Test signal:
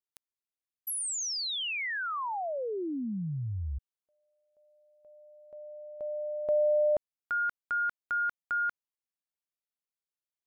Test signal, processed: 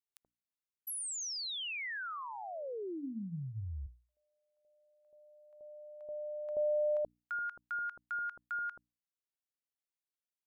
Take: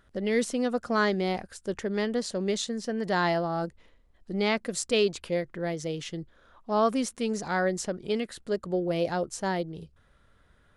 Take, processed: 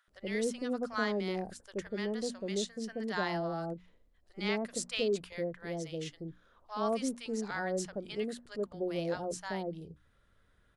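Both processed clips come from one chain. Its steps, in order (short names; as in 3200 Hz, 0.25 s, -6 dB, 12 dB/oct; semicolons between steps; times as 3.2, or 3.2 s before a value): notches 60/120/180/240/300 Hz; bands offset in time highs, lows 80 ms, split 860 Hz; gain -6 dB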